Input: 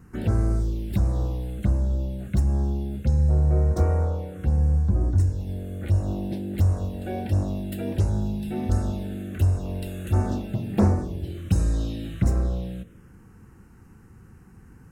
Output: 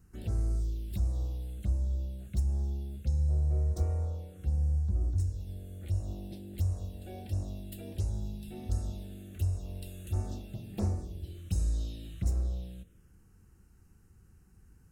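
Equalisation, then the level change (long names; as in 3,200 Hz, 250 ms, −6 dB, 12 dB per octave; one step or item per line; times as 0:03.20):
dynamic equaliser 1,500 Hz, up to −6 dB, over −59 dBFS, Q 4.4
graphic EQ with 10 bands 125 Hz −7 dB, 250 Hz −9 dB, 500 Hz −6 dB, 1,000 Hz −10 dB, 2,000 Hz −8 dB
−5.0 dB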